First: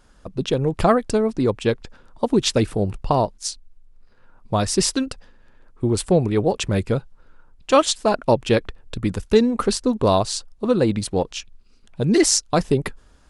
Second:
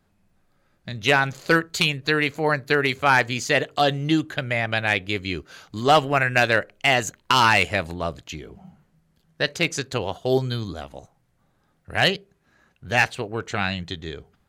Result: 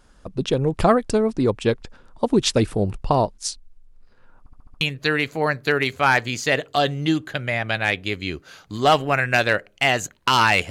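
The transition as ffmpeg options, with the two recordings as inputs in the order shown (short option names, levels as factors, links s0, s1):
-filter_complex "[0:a]apad=whole_dur=10.7,atrim=end=10.7,asplit=6[s0][s1][s2][s3][s4][s5];[s0]atrim=end=4.462[s6];[s1]atrim=start=4.388:end=4.462[s7];[s2]atrim=start=4.388:end=4.462[s8];[s3]atrim=start=4.388:end=4.462[s9];[s4]atrim=start=4.388:end=4.462[s10];[s5]atrim=start=4.388:end=4.462[s11];[1:a]atrim=start=1.838:end=7.73[s12];[s6][s7]acrossfade=d=0.004:c1=hsin:c2=hsin[s13];[s13][s8]acrossfade=d=0.004:c1=hsin:c2=hsin[s14];[s14][s9]acrossfade=d=0.004:c1=hsin:c2=hsin[s15];[s15][s10]acrossfade=d=0.004:c1=hsin:c2=hsin[s16];[s16][s11]acrossfade=d=0.004:c1=hsin:c2=hsin[s17];[s17][s12]acrossfade=d=0.004:c1=hsin:c2=hsin"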